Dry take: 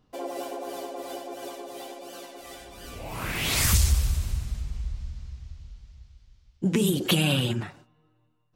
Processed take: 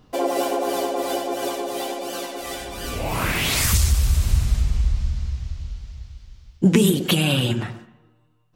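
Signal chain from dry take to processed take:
speech leveller within 5 dB 0.5 s
on a send: convolution reverb RT60 0.85 s, pre-delay 101 ms, DRR 15.5 dB
on the sum: level +7 dB

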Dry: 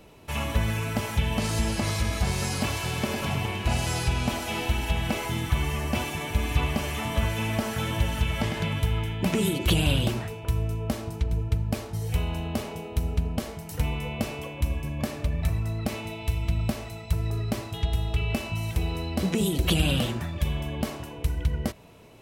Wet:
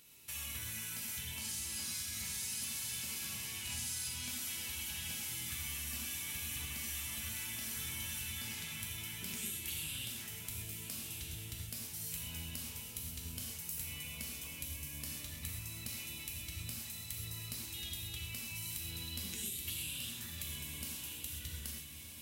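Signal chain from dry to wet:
RIAA equalisation recording
downward compressor, threshold −31 dBFS, peak gain reduction 14.5 dB
pitch vibrato 3.5 Hz 5.1 cents
guitar amp tone stack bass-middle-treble 6-0-2
on a send: feedback delay with all-pass diffusion 1,289 ms, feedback 44%, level −7 dB
on the sum: reverb whose tail is shaped and stops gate 150 ms flat, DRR −0.5 dB
level +4.5 dB

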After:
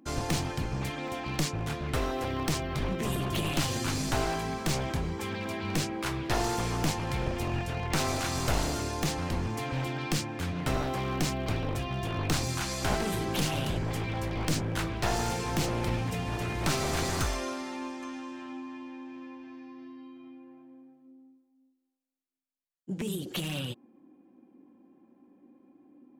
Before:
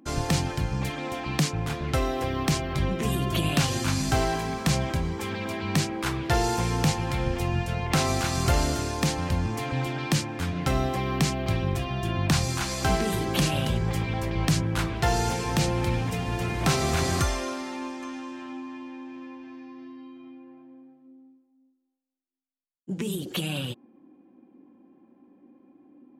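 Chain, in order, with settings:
wavefolder on the positive side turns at −23.5 dBFS
level −3 dB

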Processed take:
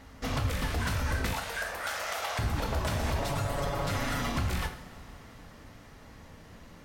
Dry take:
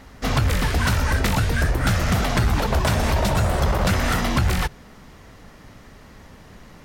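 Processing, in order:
0:01.33–0:02.39: high-pass filter 540 Hz 24 dB per octave
0:03.19–0:04.32: comb filter 7.1 ms, depth 100%
brickwall limiter −13.5 dBFS, peak gain reduction 6 dB
downward compressor 1.5 to 1, threshold −27 dBFS, peak gain reduction 4 dB
coupled-rooms reverb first 0.55 s, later 5 s, from −20 dB, DRR 4 dB
level −7 dB

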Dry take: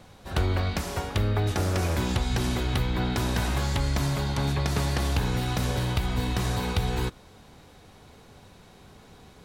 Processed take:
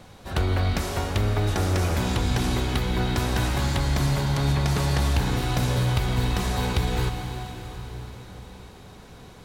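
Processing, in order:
in parallel at −7 dB: soft clipping −31.5 dBFS, distortion −8 dB
on the sum: convolution reverb RT60 5.3 s, pre-delay 98 ms, DRR 5.5 dB

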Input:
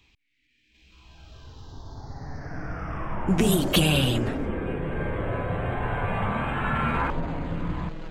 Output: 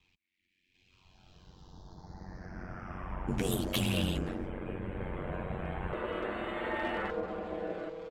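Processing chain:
comb filter 7.3 ms, depth 57%
asymmetric clip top −16.5 dBFS
ring modulation 46 Hz, from 0:05.93 480 Hz
level −7.5 dB

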